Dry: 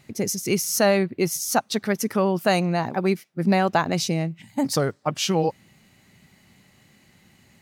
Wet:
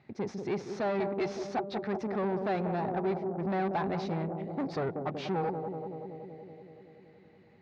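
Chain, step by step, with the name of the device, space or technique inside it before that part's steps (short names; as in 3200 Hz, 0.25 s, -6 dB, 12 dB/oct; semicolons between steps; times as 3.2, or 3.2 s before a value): 1–1.47 weighting filter D; analogue delay pedal into a guitar amplifier (analogue delay 0.188 s, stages 1024, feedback 73%, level -9.5 dB; tube stage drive 24 dB, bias 0.4; speaker cabinet 75–3600 Hz, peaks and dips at 390 Hz +5 dB, 800 Hz +6 dB, 3000 Hz -9 dB); gain -5.5 dB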